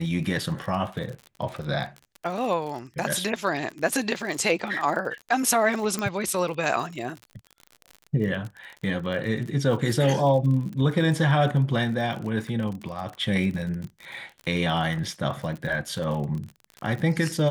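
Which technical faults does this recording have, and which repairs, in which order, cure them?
surface crackle 45 per second −32 dBFS
0:05.99: click −14 dBFS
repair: click removal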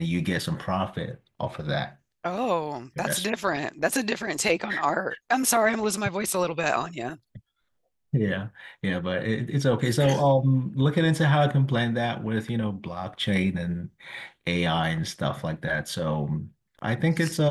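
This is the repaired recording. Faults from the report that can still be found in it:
0:05.99: click

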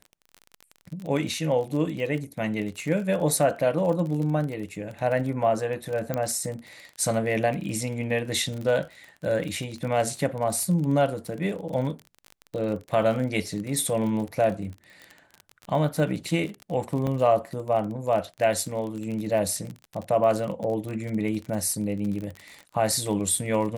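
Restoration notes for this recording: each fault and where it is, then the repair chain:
surface crackle 34 per second −31 dBFS
0:06.14: click −14 dBFS
0:17.07: drop-out 4.3 ms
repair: click removal
repair the gap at 0:17.07, 4.3 ms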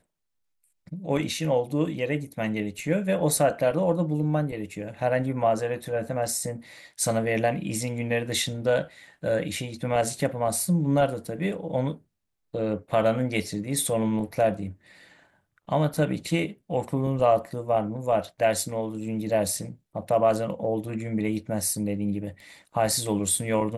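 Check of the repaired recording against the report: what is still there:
none of them is left

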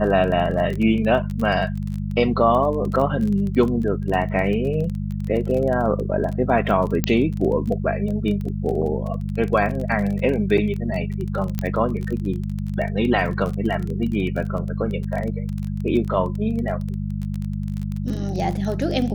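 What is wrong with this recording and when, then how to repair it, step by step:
surface crackle 25 per second −26 dBFS
mains hum 50 Hz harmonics 4 −26 dBFS
0:07.04: click −5 dBFS
0:11.59: click −11 dBFS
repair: click removal
hum removal 50 Hz, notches 4

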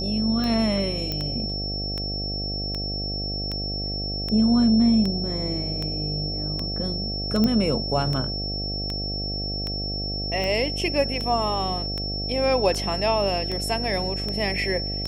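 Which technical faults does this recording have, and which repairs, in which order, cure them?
mains buzz 50 Hz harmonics 15 −31 dBFS
scratch tick 78 rpm −16 dBFS
whistle 5,400 Hz −29 dBFS
0:01.12: click −14 dBFS
0:07.44: click −11 dBFS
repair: click removal
hum removal 50 Hz, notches 15
notch filter 5,400 Hz, Q 30

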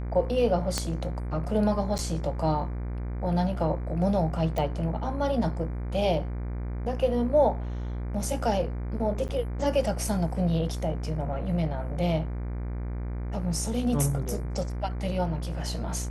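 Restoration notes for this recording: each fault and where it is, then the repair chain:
mains buzz 60 Hz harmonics 40 −32 dBFS
0:00.78: click −12 dBFS
0:01.98–0:01.99: drop-out 8.9 ms
0:04.58: click −17 dBFS
0:09.28–0:09.29: drop-out 9 ms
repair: click removal
hum removal 60 Hz, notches 40
repair the gap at 0:01.98, 8.9 ms
repair the gap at 0:09.28, 9 ms

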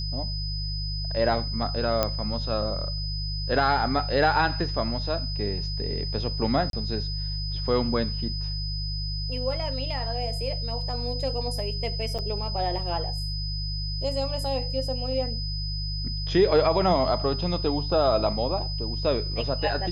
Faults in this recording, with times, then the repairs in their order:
mains hum 50 Hz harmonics 3 −31 dBFS
whistle 5,000 Hz −33 dBFS
0:02.03: click −8 dBFS
0:06.70–0:06.73: drop-out 32 ms
0:12.18–0:12.19: drop-out 6.7 ms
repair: click removal
notch filter 5,000 Hz, Q 30
hum removal 50 Hz, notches 3
repair the gap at 0:06.70, 32 ms
repair the gap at 0:12.18, 6.7 ms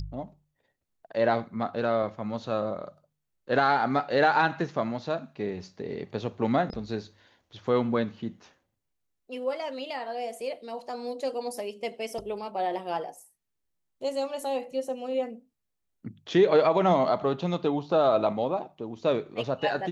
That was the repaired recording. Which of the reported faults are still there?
none of them is left

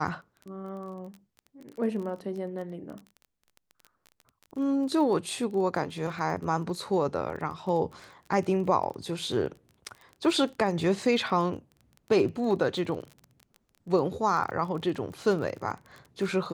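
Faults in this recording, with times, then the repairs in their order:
surface crackle 22 per second −37 dBFS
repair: click removal

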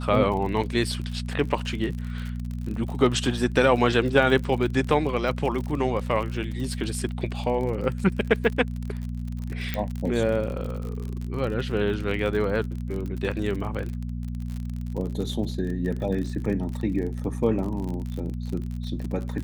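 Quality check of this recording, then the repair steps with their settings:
surface crackle 45 per second −31 dBFS
mains hum 60 Hz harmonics 4 −31 dBFS
0:09.74: click −13 dBFS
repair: click removal
hum removal 60 Hz, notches 4

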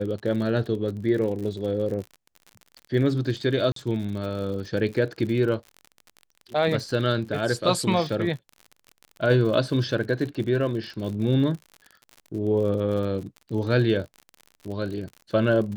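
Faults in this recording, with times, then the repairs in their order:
surface crackle 54 per second −33 dBFS
0:03.72–0:03.76: drop-out 43 ms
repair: click removal
repair the gap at 0:03.72, 43 ms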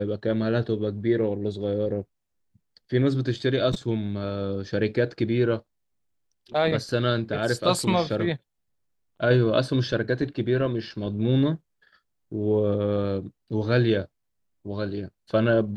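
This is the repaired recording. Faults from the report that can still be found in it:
none of them is left

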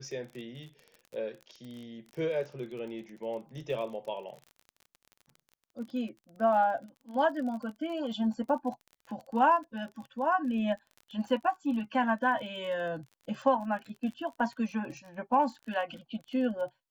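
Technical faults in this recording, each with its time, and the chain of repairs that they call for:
surface crackle 31 per second −40 dBFS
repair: click removal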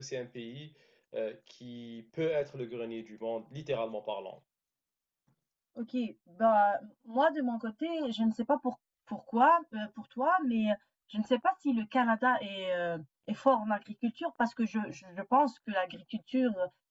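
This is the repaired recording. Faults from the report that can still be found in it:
none of them is left

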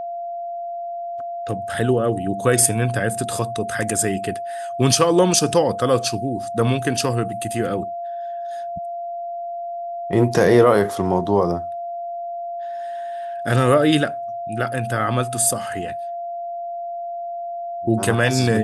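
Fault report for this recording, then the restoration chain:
whistle 690 Hz −26 dBFS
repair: notch filter 690 Hz, Q 30

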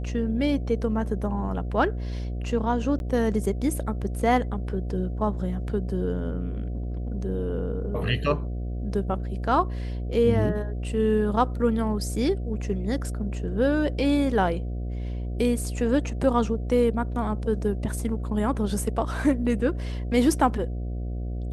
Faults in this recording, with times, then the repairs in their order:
mains buzz 60 Hz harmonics 12 −30 dBFS
0:02.99–0:03.00: drop-out 11 ms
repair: hum removal 60 Hz, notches 12
repair the gap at 0:02.99, 11 ms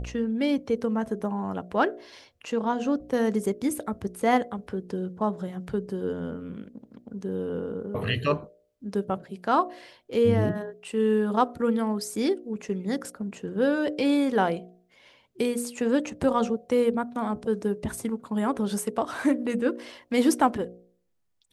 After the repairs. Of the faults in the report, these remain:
none of them is left

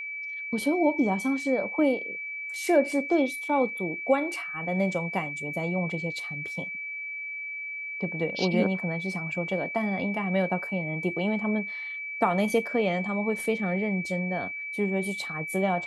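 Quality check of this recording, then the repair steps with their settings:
whistle 2,300 Hz −33 dBFS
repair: notch filter 2,300 Hz, Q 30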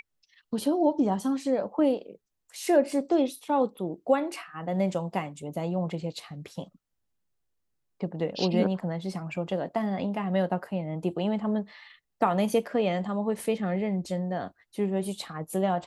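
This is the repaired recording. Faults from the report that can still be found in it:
none of them is left

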